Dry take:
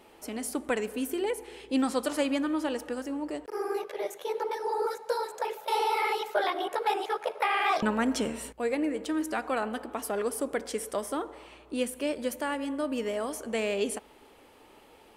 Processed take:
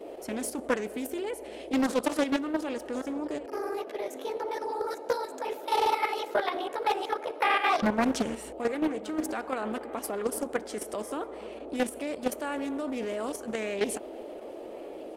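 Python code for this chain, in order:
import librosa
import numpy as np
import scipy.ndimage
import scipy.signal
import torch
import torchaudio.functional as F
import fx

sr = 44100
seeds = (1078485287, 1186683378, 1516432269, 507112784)

y = fx.dmg_noise_band(x, sr, seeds[0], low_hz=300.0, high_hz=670.0, level_db=-43.0)
y = fx.level_steps(y, sr, step_db=9)
y = fx.echo_filtered(y, sr, ms=1194, feedback_pct=74, hz=2000.0, wet_db=-22)
y = fx.doppler_dist(y, sr, depth_ms=0.57)
y = F.gain(torch.from_numpy(y), 3.5).numpy()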